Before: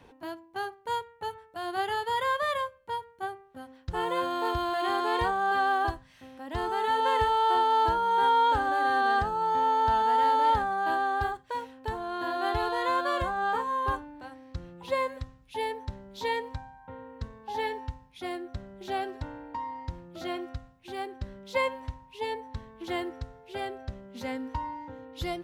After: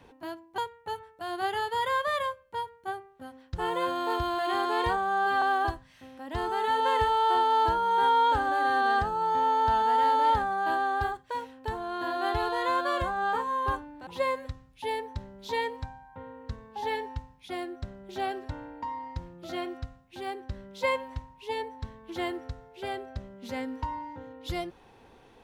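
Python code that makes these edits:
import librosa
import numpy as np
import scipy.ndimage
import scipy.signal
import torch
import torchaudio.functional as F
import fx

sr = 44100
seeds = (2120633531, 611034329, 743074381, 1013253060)

y = fx.edit(x, sr, fx.cut(start_s=0.58, length_s=0.35),
    fx.stretch_span(start_s=5.32, length_s=0.3, factor=1.5),
    fx.cut(start_s=14.27, length_s=0.52), tone=tone)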